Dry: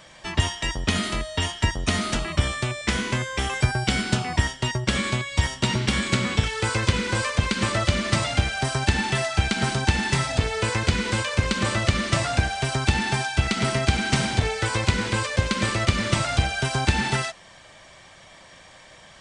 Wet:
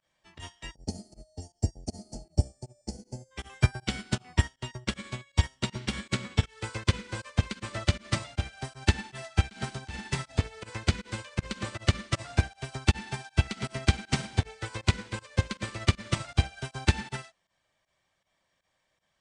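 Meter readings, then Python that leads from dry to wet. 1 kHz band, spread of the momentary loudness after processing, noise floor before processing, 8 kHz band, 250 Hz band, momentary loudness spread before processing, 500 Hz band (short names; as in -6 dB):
-12.0 dB, 12 LU, -49 dBFS, -10.5 dB, -8.5 dB, 3 LU, -10.5 dB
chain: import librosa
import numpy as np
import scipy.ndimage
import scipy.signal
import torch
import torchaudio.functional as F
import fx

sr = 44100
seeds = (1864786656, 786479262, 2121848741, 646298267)

y = fx.volume_shaper(x, sr, bpm=158, per_beat=1, depth_db=-18, release_ms=73.0, shape='fast start')
y = fx.spec_box(y, sr, start_s=0.75, length_s=2.56, low_hz=900.0, high_hz=4200.0, gain_db=-26)
y = fx.upward_expand(y, sr, threshold_db=-33.0, expansion=2.5)
y = y * librosa.db_to_amplitude(-1.0)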